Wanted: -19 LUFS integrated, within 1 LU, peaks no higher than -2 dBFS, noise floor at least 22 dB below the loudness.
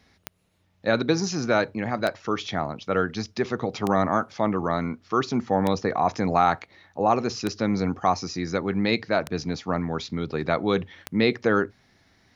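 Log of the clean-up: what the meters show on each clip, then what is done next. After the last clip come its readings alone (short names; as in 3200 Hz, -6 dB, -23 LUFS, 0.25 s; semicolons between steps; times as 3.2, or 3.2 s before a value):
clicks 7; loudness -25.5 LUFS; peak -7.5 dBFS; loudness target -19.0 LUFS
-> de-click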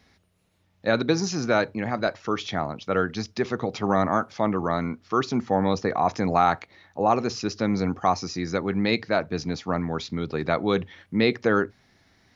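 clicks 0; loudness -25.5 LUFS; peak -7.5 dBFS; loudness target -19.0 LUFS
-> gain +6.5 dB; limiter -2 dBFS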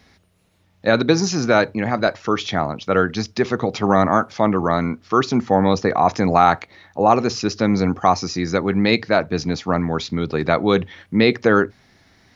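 loudness -19.0 LUFS; peak -2.0 dBFS; noise floor -59 dBFS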